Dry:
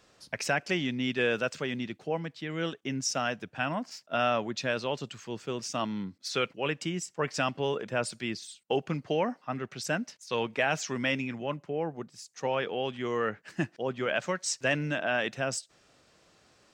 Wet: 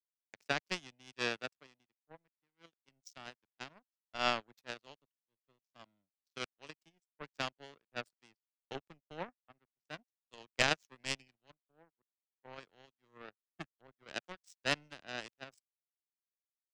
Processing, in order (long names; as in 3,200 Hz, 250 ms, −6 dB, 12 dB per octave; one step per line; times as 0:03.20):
power curve on the samples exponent 3
0:10.53–0:11.00: transient designer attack +4 dB, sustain −4 dB
multiband upward and downward expander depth 100%
level −5 dB